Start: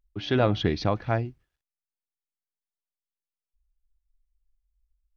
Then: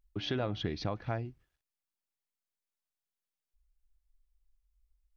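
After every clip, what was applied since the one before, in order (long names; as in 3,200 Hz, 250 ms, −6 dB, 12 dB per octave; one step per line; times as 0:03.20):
downward compressor 3 to 1, threshold −34 dBFS, peak gain reduction 12.5 dB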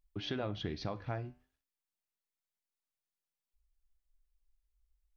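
flanger 0.46 Hz, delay 10 ms, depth 5.7 ms, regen −79%
level +1 dB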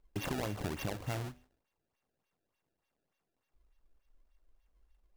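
samples sorted by size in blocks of 16 samples
downward compressor 2.5 to 1, threshold −43 dBFS, peak gain reduction 7.5 dB
sample-and-hold swept by an LFO 24×, swing 160% 3.4 Hz
level +7 dB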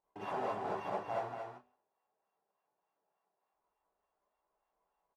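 resonant band-pass 840 Hz, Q 3.6
single-tap delay 231 ms −5.5 dB
reverb whose tail is shaped and stops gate 80 ms rising, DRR −7 dB
level +3.5 dB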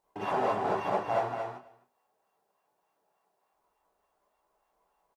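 single-tap delay 258 ms −21.5 dB
level +8.5 dB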